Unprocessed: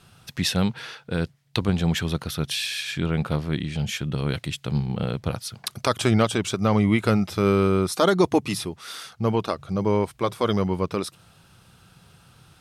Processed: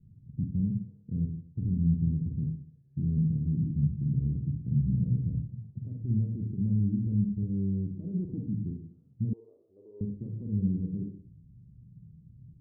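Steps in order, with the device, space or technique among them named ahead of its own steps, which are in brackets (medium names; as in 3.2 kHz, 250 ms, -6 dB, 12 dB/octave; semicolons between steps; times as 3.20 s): club heard from the street (peak limiter -18.5 dBFS, peak gain reduction 11.5 dB; low-pass 220 Hz 24 dB/octave; reverberation RT60 0.50 s, pre-delay 41 ms, DRR 1 dB); 9.33–10.01 s: elliptic band-pass 410–2100 Hz, stop band 40 dB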